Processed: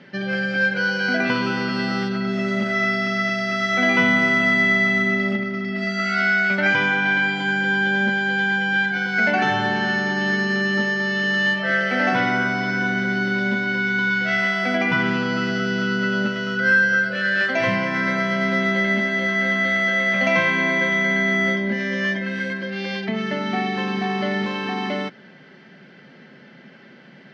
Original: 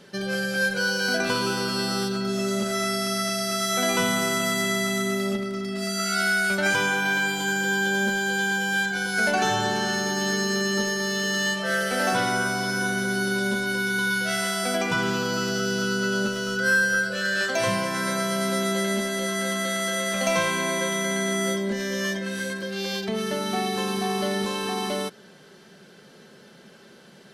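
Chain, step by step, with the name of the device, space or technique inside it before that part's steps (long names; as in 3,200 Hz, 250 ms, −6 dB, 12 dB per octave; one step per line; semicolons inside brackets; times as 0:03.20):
guitar cabinet (loudspeaker in its box 99–4,100 Hz, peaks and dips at 140 Hz +4 dB, 260 Hz +6 dB, 430 Hz −6 dB, 1,100 Hz −3 dB, 2,000 Hz +9 dB, 3,800 Hz −7 dB)
level +3 dB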